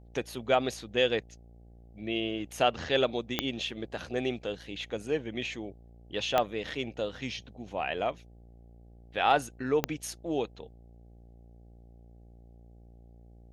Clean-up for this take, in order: de-click; de-hum 58.2 Hz, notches 14

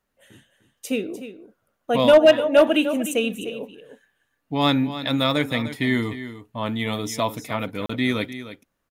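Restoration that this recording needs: clip repair -6.5 dBFS; interpolate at 7.86, 34 ms; inverse comb 0.301 s -12.5 dB

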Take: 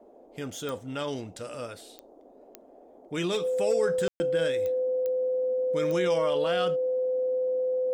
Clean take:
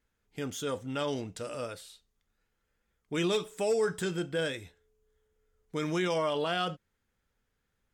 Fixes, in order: de-click; notch 510 Hz, Q 30; room tone fill 4.08–4.2; noise print and reduce 26 dB

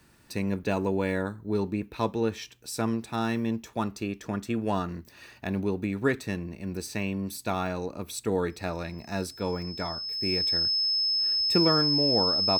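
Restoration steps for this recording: notch 5200 Hz, Q 30; interpolate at 9.62, 1.4 ms

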